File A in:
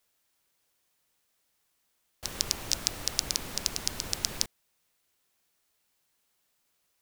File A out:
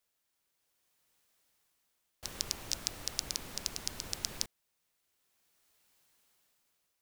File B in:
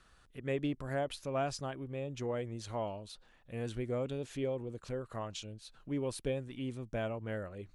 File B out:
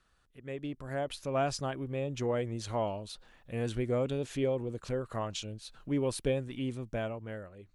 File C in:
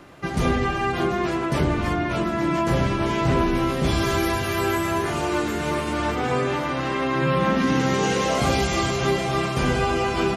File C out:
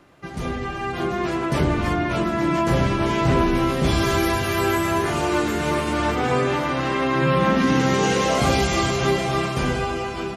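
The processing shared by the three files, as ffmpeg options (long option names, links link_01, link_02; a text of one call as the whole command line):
ffmpeg -i in.wav -af "dynaudnorm=framelen=300:gausssize=7:maxgain=12dB,volume=-7dB" out.wav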